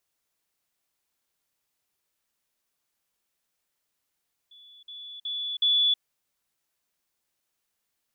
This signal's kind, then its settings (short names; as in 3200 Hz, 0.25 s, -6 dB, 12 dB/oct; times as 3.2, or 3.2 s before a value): level ladder 3440 Hz -49 dBFS, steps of 10 dB, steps 4, 0.32 s 0.05 s